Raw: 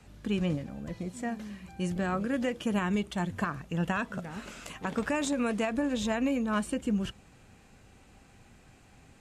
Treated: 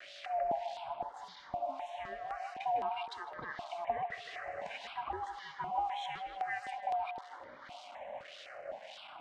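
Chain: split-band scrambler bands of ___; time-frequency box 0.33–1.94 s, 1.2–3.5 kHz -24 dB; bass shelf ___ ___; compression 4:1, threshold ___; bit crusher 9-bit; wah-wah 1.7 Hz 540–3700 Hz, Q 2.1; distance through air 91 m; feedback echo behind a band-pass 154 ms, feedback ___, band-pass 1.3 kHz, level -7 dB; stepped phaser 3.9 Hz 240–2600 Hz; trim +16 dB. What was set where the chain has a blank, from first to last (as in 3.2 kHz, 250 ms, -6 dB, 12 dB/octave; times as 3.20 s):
500 Hz, 130 Hz, +10.5 dB, -44 dBFS, 64%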